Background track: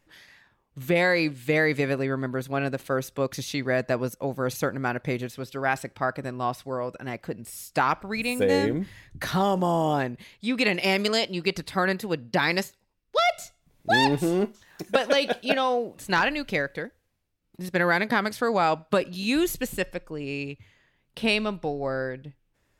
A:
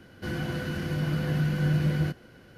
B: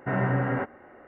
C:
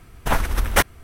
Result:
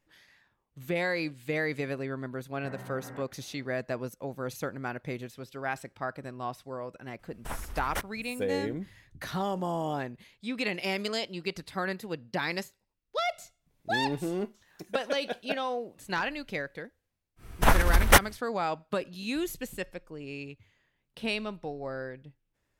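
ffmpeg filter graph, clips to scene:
-filter_complex "[3:a]asplit=2[s0][s1];[0:a]volume=0.398[s2];[2:a]acompressor=threshold=0.0398:ratio=6:attack=3.2:release=140:knee=1:detection=peak,atrim=end=1.07,asetpts=PTS-STARTPTS,volume=0.251,afade=t=in:d=0.004:c=hsin,afade=t=out:st=1.066:d=0.004:c=hsin,adelay=2580[s3];[s0]atrim=end=1.03,asetpts=PTS-STARTPTS,volume=0.141,afade=t=in:d=0.004:c=hsin,afade=t=out:st=1.026:d=0.004:c=hsin,adelay=7190[s4];[s1]atrim=end=1.03,asetpts=PTS-STARTPTS,volume=0.944,afade=t=in:d=0.1,afade=t=out:st=0.93:d=0.1,adelay=17360[s5];[s2][s3][s4][s5]amix=inputs=4:normalize=0"

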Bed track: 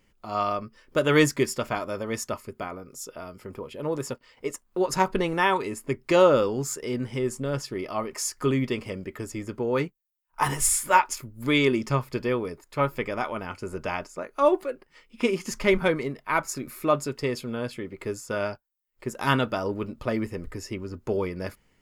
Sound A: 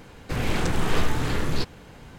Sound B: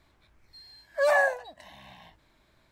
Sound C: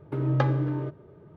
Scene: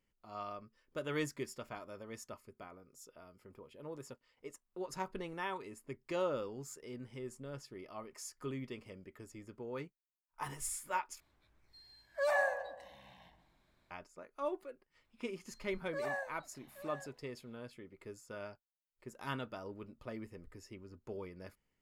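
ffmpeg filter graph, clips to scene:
-filter_complex "[2:a]asplit=2[s0][s1];[0:a]volume=0.133[s2];[s0]asplit=2[s3][s4];[s4]adelay=129,lowpass=f=1100:p=1,volume=0.447,asplit=2[s5][s6];[s6]adelay=129,lowpass=f=1100:p=1,volume=0.49,asplit=2[s7][s8];[s8]adelay=129,lowpass=f=1100:p=1,volume=0.49,asplit=2[s9][s10];[s10]adelay=129,lowpass=f=1100:p=1,volume=0.49,asplit=2[s11][s12];[s12]adelay=129,lowpass=f=1100:p=1,volume=0.49,asplit=2[s13][s14];[s14]adelay=129,lowpass=f=1100:p=1,volume=0.49[s15];[s3][s5][s7][s9][s11][s13][s15]amix=inputs=7:normalize=0[s16];[s1]aecho=1:1:824:0.237[s17];[s2]asplit=2[s18][s19];[s18]atrim=end=11.204[s20];[s16]atrim=end=2.71,asetpts=PTS-STARTPTS,volume=0.335[s21];[s19]atrim=start=13.906[s22];[s17]atrim=end=2.71,asetpts=PTS-STARTPTS,volume=0.15,afade=t=in:d=0.004:c=hsin,afade=t=out:st=2.706:d=0.004:c=hsin,adelay=14950[s23];[s20][s21]acrossfade=d=0.004:c1=hsin:c2=hsin[s24];[s24][s22]acrossfade=d=0.004:c1=hsin:c2=hsin[s25];[s25][s23]amix=inputs=2:normalize=0"

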